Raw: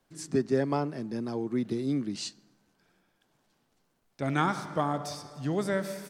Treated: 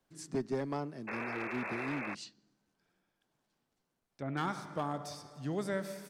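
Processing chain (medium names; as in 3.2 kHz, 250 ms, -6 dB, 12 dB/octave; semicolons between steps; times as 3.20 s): 1.07–2.15 s: painted sound noise 310–2700 Hz -31 dBFS; one-sided clip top -23.5 dBFS, bottom -16.5 dBFS; gain riding 2 s; 2.23–4.37 s: low-pass that closes with the level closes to 1.7 kHz, closed at -33 dBFS; trim -8 dB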